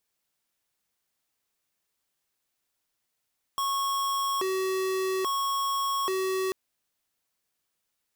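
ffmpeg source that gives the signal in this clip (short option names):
-f lavfi -i "aevalsrc='0.0398*(2*lt(mod((739*t+361/0.6*(0.5-abs(mod(0.6*t,1)-0.5))),1),0.5)-1)':d=2.94:s=44100"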